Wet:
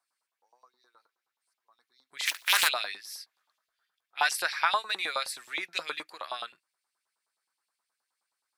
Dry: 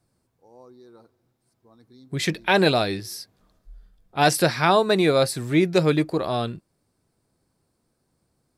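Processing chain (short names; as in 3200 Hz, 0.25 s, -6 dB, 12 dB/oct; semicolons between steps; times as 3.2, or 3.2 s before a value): 2.25–2.67 spectral contrast lowered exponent 0.3; LFO high-pass saw up 9.5 Hz 880–3300 Hz; gain -7.5 dB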